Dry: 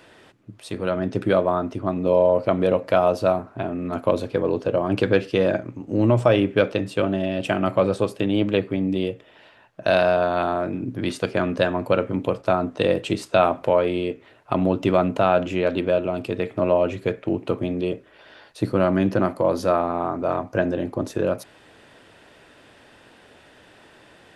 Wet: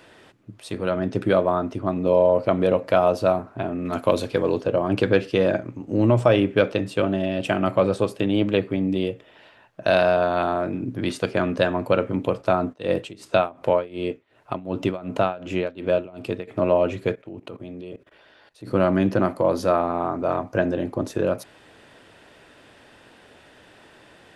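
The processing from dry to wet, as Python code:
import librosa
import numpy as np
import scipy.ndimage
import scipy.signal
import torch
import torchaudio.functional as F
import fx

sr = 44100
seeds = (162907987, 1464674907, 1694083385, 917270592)

y = fx.high_shelf(x, sr, hz=2100.0, db=8.0, at=(3.85, 4.61))
y = fx.tremolo(y, sr, hz=2.7, depth=0.91, at=(12.72, 16.47), fade=0.02)
y = fx.level_steps(y, sr, step_db=18, at=(17.14, 18.69), fade=0.02)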